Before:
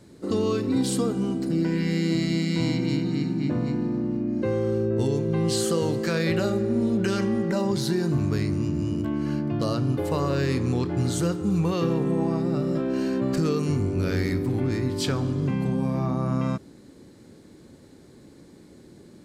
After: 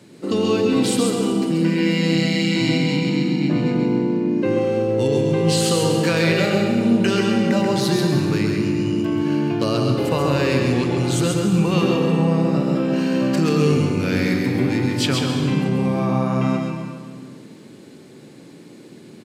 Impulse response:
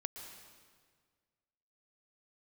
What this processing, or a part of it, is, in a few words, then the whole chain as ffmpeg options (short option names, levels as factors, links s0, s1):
PA in a hall: -filter_complex "[0:a]highpass=f=120:w=0.5412,highpass=f=120:w=1.3066,equalizer=f=2700:t=o:w=0.66:g=7.5,aecho=1:1:134:0.596[s0];[1:a]atrim=start_sample=2205[s1];[s0][s1]afir=irnorm=-1:irlink=0,volume=2.24"